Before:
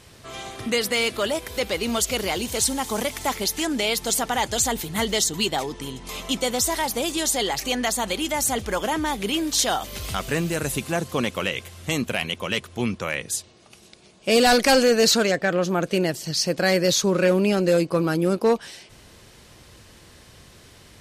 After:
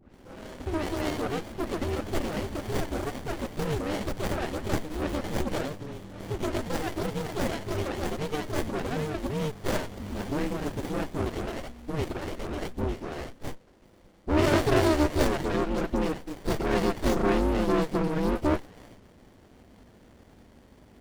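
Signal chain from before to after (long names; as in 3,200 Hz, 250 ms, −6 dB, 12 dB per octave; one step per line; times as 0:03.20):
ring modulation 150 Hz
all-pass dispersion highs, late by 141 ms, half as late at 1,800 Hz
windowed peak hold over 33 samples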